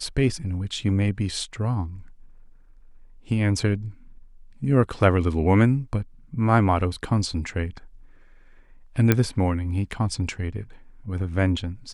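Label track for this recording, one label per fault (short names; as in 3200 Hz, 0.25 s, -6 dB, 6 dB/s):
9.120000	9.120000	pop -4 dBFS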